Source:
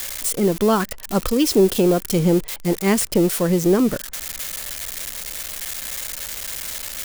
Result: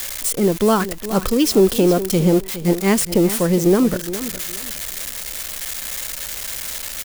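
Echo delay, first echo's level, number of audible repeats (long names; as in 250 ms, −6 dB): 414 ms, −13.0 dB, 2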